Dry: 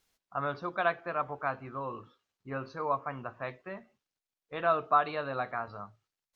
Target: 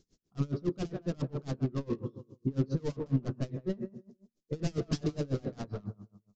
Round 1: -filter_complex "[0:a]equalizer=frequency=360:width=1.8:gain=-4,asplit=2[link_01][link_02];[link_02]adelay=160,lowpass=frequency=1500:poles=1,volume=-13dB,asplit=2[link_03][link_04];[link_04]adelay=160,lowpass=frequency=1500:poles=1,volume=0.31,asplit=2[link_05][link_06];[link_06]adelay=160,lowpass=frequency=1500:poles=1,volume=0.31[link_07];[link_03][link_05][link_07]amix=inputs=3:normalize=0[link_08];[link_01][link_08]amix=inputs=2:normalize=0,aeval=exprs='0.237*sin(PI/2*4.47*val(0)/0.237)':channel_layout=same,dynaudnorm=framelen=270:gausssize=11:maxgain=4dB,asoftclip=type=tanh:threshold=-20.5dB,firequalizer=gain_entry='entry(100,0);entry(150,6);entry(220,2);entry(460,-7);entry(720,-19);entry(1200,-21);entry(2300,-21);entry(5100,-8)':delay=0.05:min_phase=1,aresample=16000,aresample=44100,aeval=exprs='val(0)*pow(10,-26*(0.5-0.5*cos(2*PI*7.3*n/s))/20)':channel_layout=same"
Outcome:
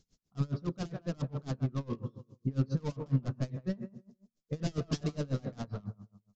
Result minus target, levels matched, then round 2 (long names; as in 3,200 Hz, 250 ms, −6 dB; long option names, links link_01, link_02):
500 Hz band −3.5 dB
-filter_complex "[0:a]equalizer=frequency=360:width=1.8:gain=6,asplit=2[link_01][link_02];[link_02]adelay=160,lowpass=frequency=1500:poles=1,volume=-13dB,asplit=2[link_03][link_04];[link_04]adelay=160,lowpass=frequency=1500:poles=1,volume=0.31,asplit=2[link_05][link_06];[link_06]adelay=160,lowpass=frequency=1500:poles=1,volume=0.31[link_07];[link_03][link_05][link_07]amix=inputs=3:normalize=0[link_08];[link_01][link_08]amix=inputs=2:normalize=0,aeval=exprs='0.237*sin(PI/2*4.47*val(0)/0.237)':channel_layout=same,dynaudnorm=framelen=270:gausssize=11:maxgain=4dB,asoftclip=type=tanh:threshold=-20.5dB,firequalizer=gain_entry='entry(100,0);entry(150,6);entry(220,2);entry(460,-7);entry(720,-19);entry(1200,-21);entry(2300,-21);entry(5100,-8)':delay=0.05:min_phase=1,aresample=16000,aresample=44100,aeval=exprs='val(0)*pow(10,-26*(0.5-0.5*cos(2*PI*7.3*n/s))/20)':channel_layout=same"